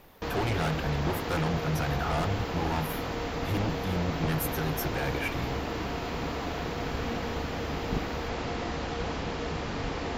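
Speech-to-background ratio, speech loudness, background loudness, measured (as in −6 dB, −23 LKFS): 1.0 dB, −32.5 LKFS, −33.5 LKFS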